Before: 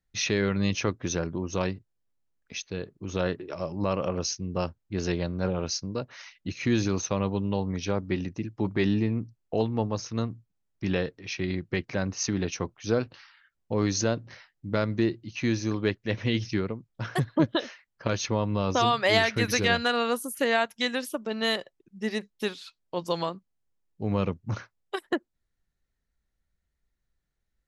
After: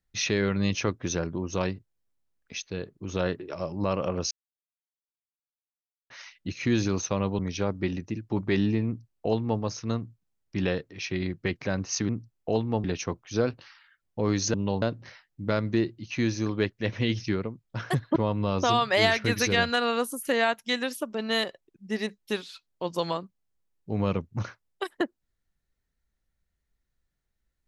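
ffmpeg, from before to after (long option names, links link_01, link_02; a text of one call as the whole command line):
ffmpeg -i in.wav -filter_complex "[0:a]asplit=9[link_01][link_02][link_03][link_04][link_05][link_06][link_07][link_08][link_09];[link_01]atrim=end=4.31,asetpts=PTS-STARTPTS,afade=type=out:start_time=4.306:duration=0.004:curve=hsin[link_10];[link_02]atrim=start=4.31:end=6.1,asetpts=PTS-STARTPTS,volume=0[link_11];[link_03]atrim=start=6.1:end=7.392,asetpts=PTS-STARTPTS,afade=type=in:duration=0.004:curve=hsin[link_12];[link_04]atrim=start=7.668:end=12.372[link_13];[link_05]atrim=start=9.138:end=9.892[link_14];[link_06]atrim=start=12.368:end=14.072[link_15];[link_07]atrim=start=7.388:end=7.672[link_16];[link_08]atrim=start=14.068:end=17.412[link_17];[link_09]atrim=start=18.278[link_18];[link_10][link_11][link_12]concat=n=3:v=0:a=1[link_19];[link_19][link_13]acrossfade=duration=0.004:curve1=hsin:curve2=hsin[link_20];[link_20][link_14]acrossfade=duration=0.004:curve1=hsin:curve2=hsin[link_21];[link_21][link_15]acrossfade=duration=0.004:curve1=hsin:curve2=hsin[link_22];[link_22][link_16]acrossfade=duration=0.004:curve1=hsin:curve2=hsin[link_23];[link_23][link_17]acrossfade=duration=0.004:curve1=hsin:curve2=hsin[link_24];[link_24][link_18]acrossfade=duration=0.004:curve1=hsin:curve2=hsin" out.wav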